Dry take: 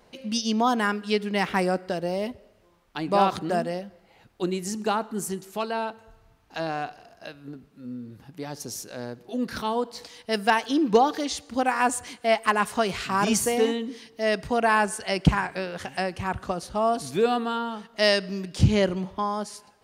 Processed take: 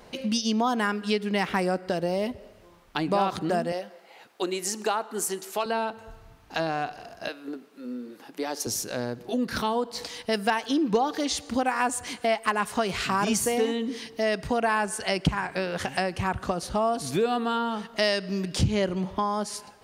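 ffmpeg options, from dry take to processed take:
-filter_complex "[0:a]asettb=1/sr,asplit=3[s0][s1][s2];[s0]atrim=end=3.724[s3];[s1]atrim=start=3.72:end=5.66,asetpts=PTS-STARTPTS,afade=t=in:d=0.004:c=qsin,afade=t=out:st=1.936:d=0.004:c=qsin,highpass=430[s4];[s2]atrim=start=5.656[s5];[s3][s4]acrossfade=d=0.004:c1=hsin:c2=qsin[s6];[s6][s5]acrossfade=d=0.004:c1=qsin:c2=hsin,asettb=1/sr,asplit=3[s7][s8][s9];[s7]atrim=end=7.284[s10];[s8]atrim=start=7.28:end=8.67,asetpts=PTS-STARTPTS,afade=t=in:d=0.004:c=qsin,afade=t=out:st=1.386:d=0.004:c=qsin,highpass=f=290:w=0.5412,highpass=f=290:w=1.3066[s11];[s9]atrim=start=8.666[s12];[s10][s11]acrossfade=d=0.004:c1=hsin:c2=qsin[s13];[s13][s12]acrossfade=d=0.004:c1=qsin:c2=hsin,acompressor=threshold=0.02:ratio=2.5,volume=2.37"

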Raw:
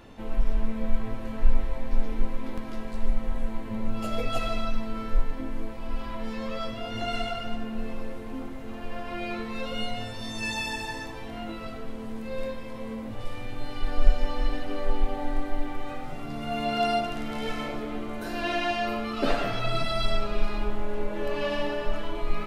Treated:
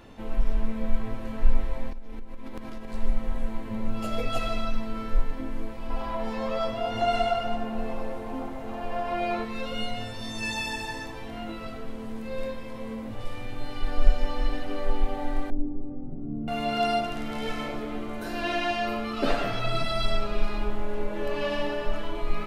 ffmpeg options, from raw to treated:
-filter_complex "[0:a]asettb=1/sr,asplit=3[s0][s1][s2];[s0]atrim=end=1.904[s3];[s1]atrim=start=1.9:end=2.91,asetpts=PTS-STARTPTS,afade=t=in:d=0.004:c=qsin,afade=t=out:st=1.006:d=0.004:c=qsin,acompressor=threshold=0.0316:ratio=16:attack=3.2:release=140:knee=1:detection=peak[s4];[s2]atrim=start=2.906[s5];[s3][s4]acrossfade=d=0.004:c1=hsin:c2=qsin[s6];[s6][s5]acrossfade=d=0.004:c1=qsin:c2=hsin,asettb=1/sr,asplit=3[s7][s8][s9];[s7]atrim=end=5.904[s10];[s8]atrim=start=5.9:end=9.45,asetpts=PTS-STARTPTS,afade=t=in:d=0.004:c=qsin,afade=t=out:st=3.546:d=0.004:c=qsin,equalizer=f=760:w=1.3:g=10[s11];[s9]atrim=start=9.446[s12];[s10][s11]acrossfade=d=0.004:c1=hsin:c2=qsin[s13];[s13][s12]acrossfade=d=0.004:c1=qsin:c2=hsin,asettb=1/sr,asplit=3[s14][s15][s16];[s14]atrim=end=15.504[s17];[s15]atrim=start=15.5:end=16.48,asetpts=PTS-STARTPTS,afade=t=in:d=0.004:c=qsin,afade=t=out:st=0.976:d=0.004:c=qsin,lowpass=f=290:t=q:w=1.7[s18];[s16]atrim=start=16.476[s19];[s17][s18]acrossfade=d=0.004:c1=hsin:c2=qsin[s20];[s20][s19]acrossfade=d=0.004:c1=qsin:c2=hsin"

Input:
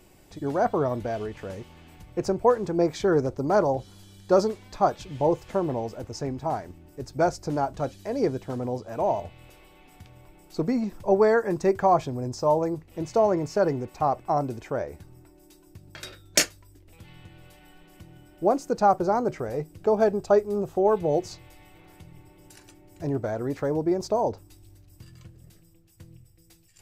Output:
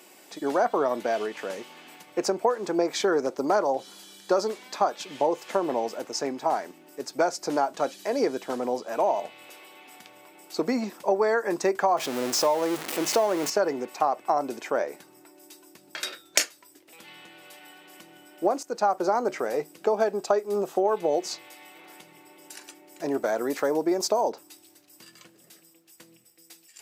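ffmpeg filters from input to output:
-filter_complex "[0:a]asettb=1/sr,asplit=3[s0][s1][s2];[s0]atrim=end=11.974[s3];[s1]atrim=start=11.97:end=13.5,asetpts=PTS-STARTPTS,afade=t=in:d=0.004:c=qsin,afade=t=out:st=1.526:d=0.004:c=qsin,aeval=exprs='val(0)+0.5*0.0282*sgn(val(0))':c=same[s4];[s2]atrim=start=13.496[s5];[s3][s4]acrossfade=d=0.004:c1=hsin:c2=qsin[s6];[s6][s5]acrossfade=d=0.004:c1=qsin:c2=hsin,asettb=1/sr,asplit=3[s7][s8][s9];[s7]atrim=end=23.114[s10];[s8]atrim=start=23.11:end=24.3,asetpts=PTS-STARTPTS,afade=t=in:d=0.004:c=qsin,afade=t=out:st=1.186:d=0.004:c=qsin,highshelf=f=8200:g=9[s11];[s9]atrim=start=24.296[s12];[s10][s11]acrossfade=d=0.004:c1=hsin:c2=qsin[s13];[s13][s12]acrossfade=d=0.004:c1=qsin:c2=hsin,asplit=2[s14][s15];[s14]atrim=end=18.63,asetpts=PTS-STARTPTS,afade=t=out:st=18.626:d=0.004:c=hsin:silence=0.211349[s16];[s15]atrim=start=18.63,asetpts=PTS-STARTPTS,afade=t=in:d=0.4:silence=0.211349[s17];[s16][s17]concat=n=2:v=0:a=1,highpass=f=220:w=0.5412,highpass=f=220:w=1.3066,lowshelf=f=480:g=-10.5,acompressor=threshold=0.0398:ratio=6,volume=2.66"

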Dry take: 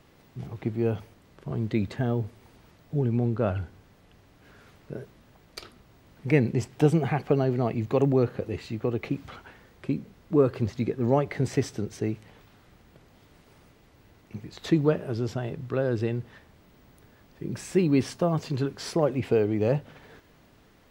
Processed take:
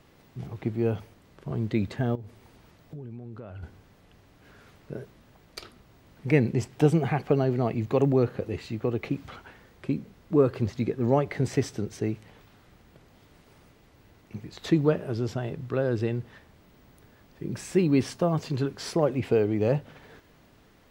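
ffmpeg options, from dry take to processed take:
-filter_complex "[0:a]asettb=1/sr,asplit=3[s0][s1][s2];[s0]atrim=end=2.154[s3];[s1]atrim=start=2.15:end=3.63,asetpts=PTS-STARTPTS,afade=t=in:d=0.004:c=qsin,afade=t=out:st=1.476:d=0.004:c=qsin,acompressor=threshold=0.0141:ratio=10:attack=3.2:release=140:knee=1:detection=peak[s4];[s2]atrim=start=3.626[s5];[s3][s4]acrossfade=d=0.004:c1=hsin:c2=qsin[s6];[s6][s5]acrossfade=d=0.004:c1=qsin:c2=hsin"

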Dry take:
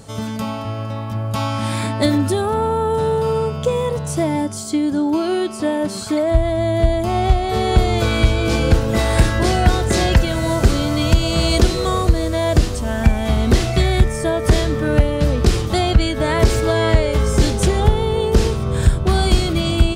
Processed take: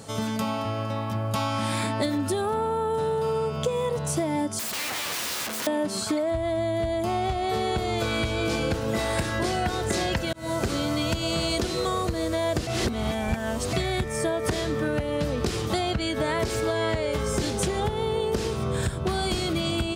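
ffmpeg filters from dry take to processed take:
-filter_complex "[0:a]asettb=1/sr,asplit=3[s0][s1][s2];[s0]atrim=end=4.594[s3];[s1]atrim=start=4.59:end=5.67,asetpts=PTS-STARTPTS,afade=t=in:d=0.004:c=qsin,afade=t=out:st=1.076:d=0.004:c=qsin,aeval=exprs='(mod(18.8*val(0)+1,2)-1)/18.8':c=same[s4];[s2]atrim=start=5.666[s5];[s3][s4]acrossfade=d=0.004:c1=hsin:c2=qsin[s6];[s6][s5]acrossfade=d=0.004:c1=qsin:c2=hsin,asplit=4[s7][s8][s9][s10];[s7]atrim=end=10.33,asetpts=PTS-STARTPTS,afade=t=out:st=10.326:d=0.004:c=hsin[s11];[s8]atrim=start=10.33:end=12.672,asetpts=PTS-STARTPTS,afade=t=in:d=0.41[s12];[s9]atrim=start=12.668:end=13.732,asetpts=PTS-STARTPTS,areverse[s13];[s10]atrim=start=13.728[s14];[s11][s12]concat=n=2:v=0:a=1[s15];[s15][s13]acrossfade=d=0.004:c1=hsin:c2=hsin[s16];[s16][s14]acrossfade=d=0.004:c1=hsin:c2=hsin,highpass=76,lowshelf=f=170:g=-6,acompressor=threshold=0.0708:ratio=6"

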